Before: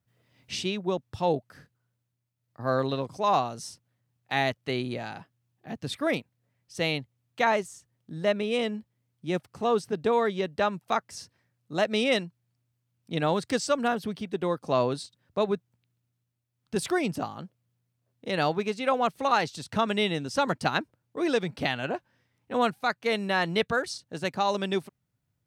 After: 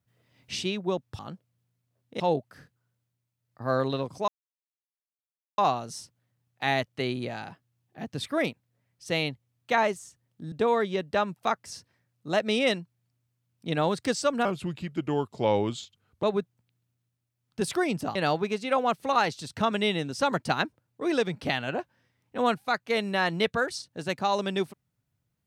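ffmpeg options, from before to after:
-filter_complex "[0:a]asplit=8[s0][s1][s2][s3][s4][s5][s6][s7];[s0]atrim=end=1.192[s8];[s1]atrim=start=17.298:end=18.312[s9];[s2]atrim=start=1.188:end=3.27,asetpts=PTS-STARTPTS,afade=t=out:st=2.078:d=0.004:c=hsin,apad=pad_dur=1.3[s10];[s3]atrim=start=3.27:end=8.212,asetpts=PTS-STARTPTS,afade=t=in:d=0.004:c=hsin[s11];[s4]atrim=start=9.968:end=13.904[s12];[s5]atrim=start=13.9:end=15.38,asetpts=PTS-STARTPTS,asetrate=36603,aresample=44100,atrim=end_sample=78636,asetpts=PTS-STARTPTS[s13];[s6]atrim=start=15.376:end=17.302[s14];[s7]atrim=start=18.308[s15];[s8][s9]acrossfade=d=0.004:c1=hsin:c2=hsin[s16];[s10][s11]concat=n=2:v=0:a=1[s17];[s16][s17]acrossfade=d=0.004:c1=hsin:c2=hsin[s18];[s18][s12]acrossfade=d=0.004:c1=hsin:c2=hsin[s19];[s19][s13]acrossfade=d=0.004:c1=hsin:c2=hsin[s20];[s20][s14]acrossfade=d=0.004:c1=hsin:c2=hsin[s21];[s21][s15]acrossfade=d=0.004:c1=hsin:c2=hsin"

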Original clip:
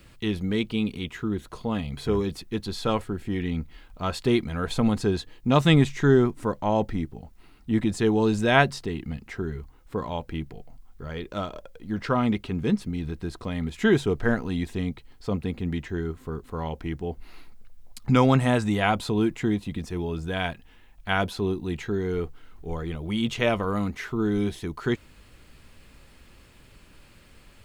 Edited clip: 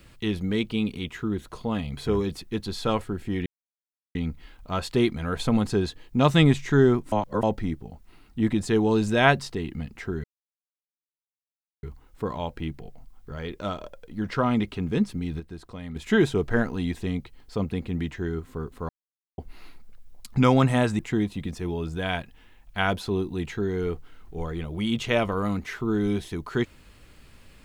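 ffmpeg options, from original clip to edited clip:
-filter_complex "[0:a]asplit=10[s0][s1][s2][s3][s4][s5][s6][s7][s8][s9];[s0]atrim=end=3.46,asetpts=PTS-STARTPTS,afade=t=out:st=3.456:d=0.004:c=hsin,apad=pad_dur=0.69[s10];[s1]atrim=start=3.46:end=6.432,asetpts=PTS-STARTPTS,afade=t=in:d=0.004:c=hsin[s11];[s2]atrim=start=6.428:end=6.742,asetpts=PTS-STARTPTS,areverse[s12];[s3]atrim=start=6.738:end=9.55,asetpts=PTS-STARTPTS,afade=t=out:st=2.808:d=0.004:c=hsin,apad=pad_dur=1.59[s13];[s4]atrim=start=9.55:end=13.122,asetpts=PTS-STARTPTS,afade=t=in:d=0.004:c=hsin[s14];[s5]atrim=start=13.118:end=13.682,asetpts=PTS-STARTPTS,volume=0.422[s15];[s6]atrim=start=13.678:end=16.61,asetpts=PTS-STARTPTS,afade=t=out:st=2.928:d=0.004:c=hsin[s16];[s7]atrim=start=16.61:end=17.1,asetpts=PTS-STARTPTS,volume=0[s17];[s8]atrim=start=17.1:end=18.712,asetpts=PTS-STARTPTS,afade=t=in:d=0.004:c=hsin[s18];[s9]atrim=start=19.298[s19];[s10][s11]concat=n=2:v=0:a=1[s20];[s20][s12]acrossfade=d=0.004:c1=hsin:c2=hsin[s21];[s13][s14]concat=n=2:v=0:a=1[s22];[s21][s22]acrossfade=d=0.004:c1=hsin:c2=hsin[s23];[s23][s15]acrossfade=d=0.004:c1=hsin:c2=hsin[s24];[s16][s17][s18]concat=n=3:v=0:a=1[s25];[s24][s25]acrossfade=d=0.004:c1=hsin:c2=hsin[s26];[s26][s19]acrossfade=d=0.004:c1=hsin:c2=hsin"

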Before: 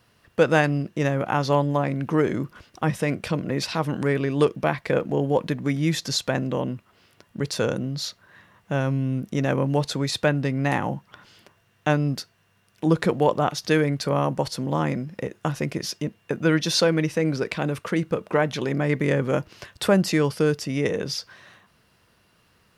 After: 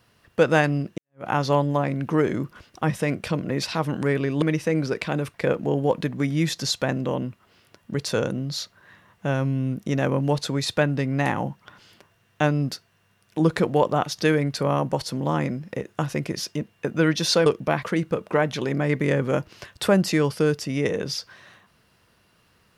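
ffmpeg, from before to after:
-filter_complex "[0:a]asplit=6[s0][s1][s2][s3][s4][s5];[s0]atrim=end=0.98,asetpts=PTS-STARTPTS,afade=t=out:st=0.976:d=0.004:c=hsin[s6];[s1]atrim=start=0.98:end=4.422,asetpts=PTS-STARTPTS,afade=t=in:d=0.27:c=exp[s7];[s2]atrim=start=16.918:end=17.842[s8];[s3]atrim=start=4.798:end=16.922[s9];[s4]atrim=start=4.418:end=4.802[s10];[s5]atrim=start=17.838[s11];[s6][s7]concat=n=2:v=0:a=1[s12];[s12][s8]acrossfade=d=0.004:c1=hsin:c2=hsin[s13];[s13][s9]acrossfade=d=0.004:c1=hsin:c2=hsin[s14];[s14][s10]acrossfade=d=0.004:c1=hsin:c2=hsin[s15];[s15][s11]acrossfade=d=0.004:c1=hsin:c2=hsin"

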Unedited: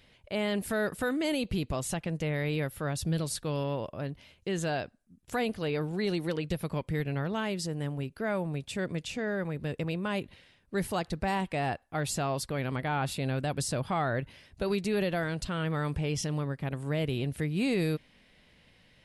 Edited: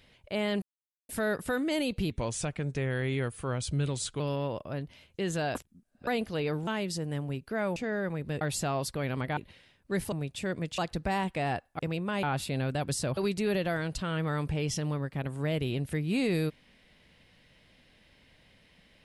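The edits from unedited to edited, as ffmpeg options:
-filter_complex "[0:a]asplit=15[s0][s1][s2][s3][s4][s5][s6][s7][s8][s9][s10][s11][s12][s13][s14];[s0]atrim=end=0.62,asetpts=PTS-STARTPTS,afade=t=out:st=0.616:d=0.004:c=hsin,apad=pad_dur=0.47[s15];[s1]atrim=start=0.62:end=1.644,asetpts=PTS-STARTPTS,afade=t=in:d=0.004:c=hsin[s16];[s2]atrim=start=1.64:end=3.48,asetpts=PTS-STARTPTS,asetrate=38808,aresample=44100,atrim=end_sample=92209,asetpts=PTS-STARTPTS[s17];[s3]atrim=start=3.476:end=4.832[s18];[s4]atrim=start=4.828:end=5.352,asetpts=PTS-STARTPTS,areverse[s19];[s5]atrim=start=5.348:end=5.952[s20];[s6]atrim=start=7.358:end=8.452[s21];[s7]atrim=start=9.108:end=9.762[s22];[s8]atrim=start=11.958:end=12.922[s23];[s9]atrim=start=10.198:end=10.952[s24];[s10]atrim=start=8.448:end=9.112[s25];[s11]atrim=start=10.948:end=11.962[s26];[s12]atrim=start=9.758:end=10.202[s27];[s13]atrim=start=12.918:end=13.862[s28];[s14]atrim=start=14.638[s29];[s15][s16]concat=n=2:v=0:a=1[s30];[s30][s17]acrossfade=d=0.004:c1=hsin:c2=hsin[s31];[s31][s18]acrossfade=d=0.004:c1=hsin:c2=hsin[s32];[s32][s19]acrossfade=d=0.004:c1=hsin:c2=hsin[s33];[s33][s20]acrossfade=d=0.004:c1=hsin:c2=hsin[s34];[s34][s21]acrossfade=d=0.004:c1=hsin:c2=hsin[s35];[s35][s22]acrossfade=d=0.004:c1=hsin:c2=hsin[s36];[s36][s23]acrossfade=d=0.004:c1=hsin:c2=hsin[s37];[s37][s24]acrossfade=d=0.004:c1=hsin:c2=hsin[s38];[s38][s25]acrossfade=d=0.004:c1=hsin:c2=hsin[s39];[s39][s26]acrossfade=d=0.004:c1=hsin:c2=hsin[s40];[s40][s27]acrossfade=d=0.004:c1=hsin:c2=hsin[s41];[s41][s28]acrossfade=d=0.004:c1=hsin:c2=hsin[s42];[s42][s29]acrossfade=d=0.004:c1=hsin:c2=hsin"

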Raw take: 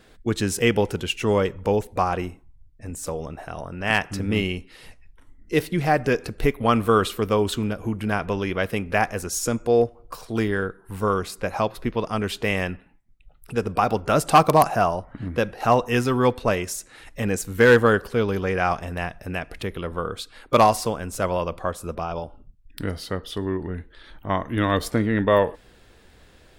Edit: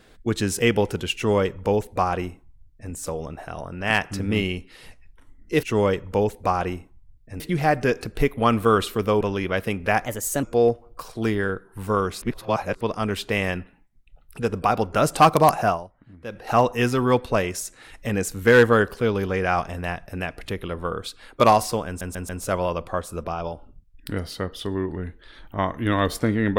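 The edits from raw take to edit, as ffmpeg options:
-filter_complex "[0:a]asplit=13[s0][s1][s2][s3][s4][s5][s6][s7][s8][s9][s10][s11][s12];[s0]atrim=end=5.632[s13];[s1]atrim=start=1.148:end=2.922[s14];[s2]atrim=start=5.628:end=7.442[s15];[s3]atrim=start=8.268:end=9.114[s16];[s4]atrim=start=9.11:end=9.56,asetpts=PTS-STARTPTS,asetrate=52479,aresample=44100,atrim=end_sample=16676,asetpts=PTS-STARTPTS[s17];[s5]atrim=start=9.556:end=11.352[s18];[s6]atrim=start=11.348:end=11.942,asetpts=PTS-STARTPTS,areverse[s19];[s7]atrim=start=11.938:end=15.07,asetpts=PTS-STARTPTS,afade=t=out:st=2.872:d=0.26:c=qua:silence=0.149624[s20];[s8]atrim=start=15.07:end=15.32,asetpts=PTS-STARTPTS,volume=0.15[s21];[s9]atrim=start=15.32:end=21.142,asetpts=PTS-STARTPTS,afade=t=in:d=0.26:c=qua:silence=0.149624[s22];[s10]atrim=start=20.998:end=21.142[s23];[s11]atrim=start=20.998:end=21.142[s24];[s12]atrim=start=20.998[s25];[s13][s14]acrossfade=d=0.004:c1=hsin:c2=hsin[s26];[s26][s15]acrossfade=d=0.004:c1=hsin:c2=hsin[s27];[s27][s16]acrossfade=d=0.004:c1=hsin:c2=hsin[s28];[s28][s17]acrossfade=d=0.004:c1=hsin:c2=hsin[s29];[s29][s18]acrossfade=d=0.004:c1=hsin:c2=hsin[s30];[s30][s19]acrossfade=d=0.004:c1=hsin:c2=hsin[s31];[s20][s21][s22]concat=n=3:v=0:a=1[s32];[s31][s32]acrossfade=d=0.004:c1=hsin:c2=hsin[s33];[s33][s23]acrossfade=d=0.004:c1=hsin:c2=hsin[s34];[s34][s24]acrossfade=d=0.004:c1=hsin:c2=hsin[s35];[s35][s25]acrossfade=d=0.004:c1=hsin:c2=hsin"

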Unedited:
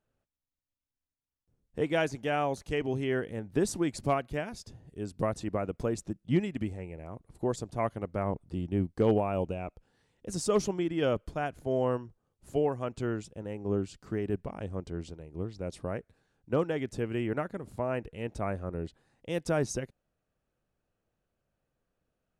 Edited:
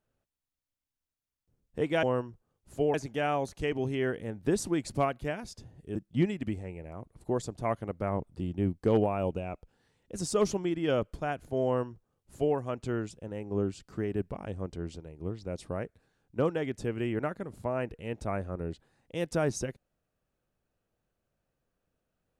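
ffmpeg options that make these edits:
-filter_complex "[0:a]asplit=4[s0][s1][s2][s3];[s0]atrim=end=2.032[s4];[s1]atrim=start=11.788:end=12.702[s5];[s2]atrim=start=2.028:end=5.042[s6];[s3]atrim=start=6.088[s7];[s4][s5]acrossfade=d=0.004:c1=hsin:c2=hsin[s8];[s8][s6]acrossfade=d=0.004:c1=hsin:c2=hsin[s9];[s9][s7]acrossfade=d=0.004:c1=hsin:c2=hsin"

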